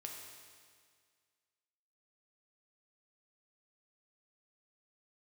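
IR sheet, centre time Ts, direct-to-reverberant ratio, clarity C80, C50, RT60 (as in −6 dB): 72 ms, 0.0 dB, 4.0 dB, 2.5 dB, 1.9 s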